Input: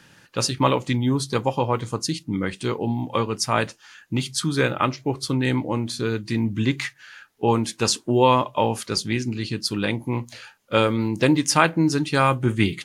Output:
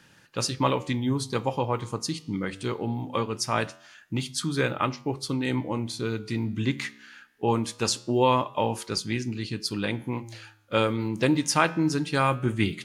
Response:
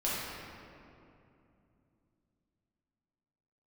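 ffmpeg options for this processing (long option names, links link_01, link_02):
-filter_complex "[0:a]flanger=delay=9.7:depth=6.1:regen=-89:speed=0.22:shape=sinusoidal,asettb=1/sr,asplit=3[link_01][link_02][link_03];[link_01]atrim=end=5.274[link_04];[link_02]atrim=start=5.27:end=6.6,asetpts=PTS-STARTPTS,afade=type=in:duration=0.004:curve=qsin,afade=type=out:start_time=1.326:duration=0.004:curve=qsin,bandreject=frequency=1700:width=9.1[link_05];[link_03]atrim=start=6.596[link_06];[link_04][link_05]acrossfade=duration=0.004:curve1=hsin:curve2=qsin[link_07];[link_07][link_06]acrossfade=duration=0.004:curve1=qsin:curve2=hsin"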